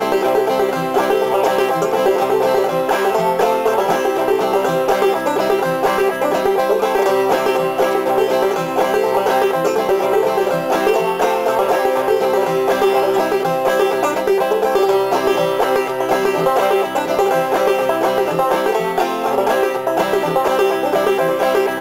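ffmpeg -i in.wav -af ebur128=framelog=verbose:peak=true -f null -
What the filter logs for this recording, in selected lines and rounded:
Integrated loudness:
  I:         -16.2 LUFS
  Threshold: -26.2 LUFS
Loudness range:
  LRA:         0.7 LU
  Threshold: -36.2 LUFS
  LRA low:   -16.6 LUFS
  LRA high:  -15.9 LUFS
True peak:
  Peak:       -3.9 dBFS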